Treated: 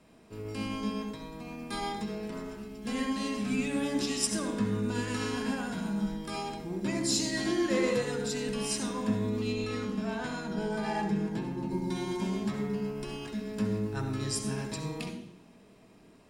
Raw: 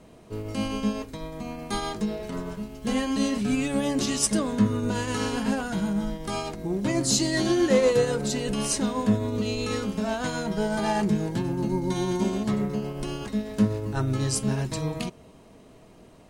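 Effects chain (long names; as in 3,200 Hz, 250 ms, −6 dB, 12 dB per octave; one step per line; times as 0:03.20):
0:09.52–0:11.71: high-shelf EQ 4,000 Hz −7 dB
convolution reverb RT60 0.60 s, pre-delay 63 ms, DRR 4.5 dB
level −7 dB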